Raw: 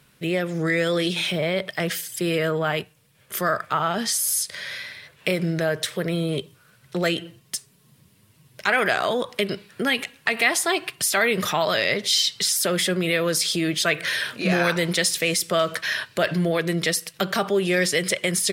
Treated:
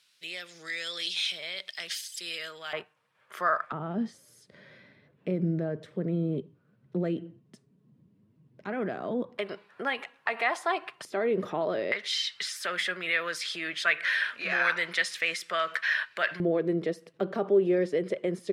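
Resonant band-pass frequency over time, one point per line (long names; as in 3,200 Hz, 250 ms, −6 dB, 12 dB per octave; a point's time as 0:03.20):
resonant band-pass, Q 1.5
4,600 Hz
from 0:02.73 1,100 Hz
from 0:03.72 240 Hz
from 0:09.38 940 Hz
from 0:11.05 360 Hz
from 0:11.92 1,700 Hz
from 0:16.40 370 Hz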